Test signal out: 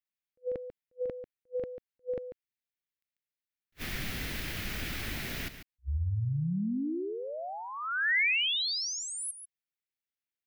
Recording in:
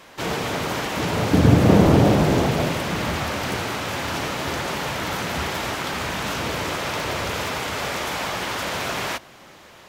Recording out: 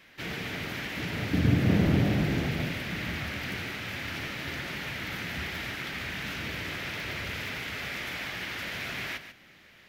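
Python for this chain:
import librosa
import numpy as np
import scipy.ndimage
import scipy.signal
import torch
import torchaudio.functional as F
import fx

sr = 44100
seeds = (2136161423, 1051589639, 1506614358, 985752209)

p1 = fx.graphic_eq(x, sr, hz=(500, 1000, 2000, 8000), db=(-6, -11, 7, -9))
p2 = p1 + fx.echo_single(p1, sr, ms=143, db=-11.0, dry=0)
p3 = fx.attack_slew(p2, sr, db_per_s=570.0)
y = F.gain(torch.from_numpy(p3), -8.0).numpy()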